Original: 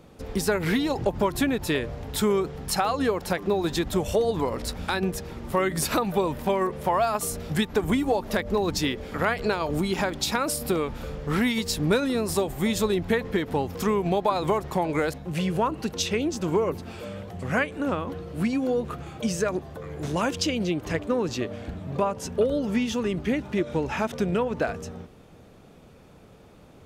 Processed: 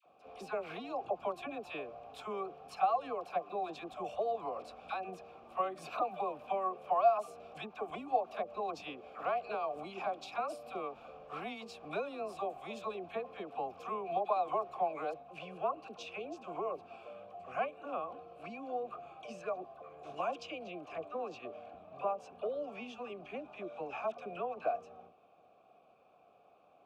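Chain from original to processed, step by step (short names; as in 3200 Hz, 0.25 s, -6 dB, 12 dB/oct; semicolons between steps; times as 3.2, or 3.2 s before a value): vowel filter a; dispersion lows, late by 62 ms, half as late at 870 Hz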